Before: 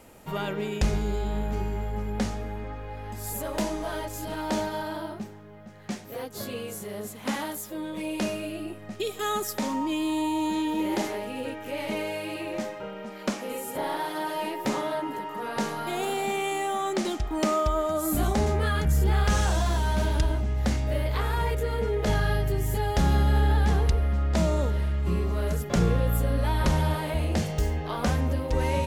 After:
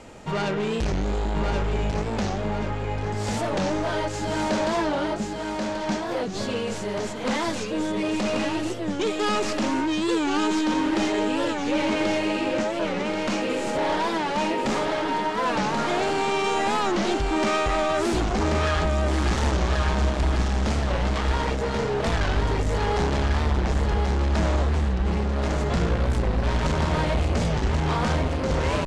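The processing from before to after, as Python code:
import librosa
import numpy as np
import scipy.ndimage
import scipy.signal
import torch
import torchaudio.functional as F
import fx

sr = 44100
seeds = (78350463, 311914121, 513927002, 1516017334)

y = fx.tracing_dist(x, sr, depth_ms=0.23)
y = np.clip(10.0 ** (30.0 / 20.0) * y, -1.0, 1.0) / 10.0 ** (30.0 / 20.0)
y = scipy.signal.sosfilt(scipy.signal.butter(4, 7600.0, 'lowpass', fs=sr, output='sos'), y)
y = fx.echo_feedback(y, sr, ms=1084, feedback_pct=42, wet_db=-4)
y = fx.record_warp(y, sr, rpm=45.0, depth_cents=160.0)
y = F.gain(torch.from_numpy(y), 7.5).numpy()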